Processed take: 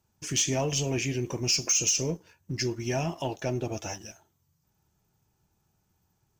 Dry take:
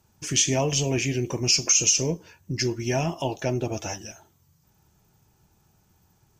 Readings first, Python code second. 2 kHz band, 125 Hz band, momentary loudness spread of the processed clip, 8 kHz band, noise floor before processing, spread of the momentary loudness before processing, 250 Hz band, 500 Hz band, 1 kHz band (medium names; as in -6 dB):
-4.5 dB, -4.0 dB, 15 LU, -5.0 dB, -65 dBFS, 16 LU, -4.0 dB, -4.0 dB, -4.0 dB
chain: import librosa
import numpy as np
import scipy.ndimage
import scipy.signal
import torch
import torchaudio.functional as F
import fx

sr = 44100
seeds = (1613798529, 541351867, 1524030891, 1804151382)

y = fx.leveller(x, sr, passes=1)
y = y * librosa.db_to_amplitude(-7.5)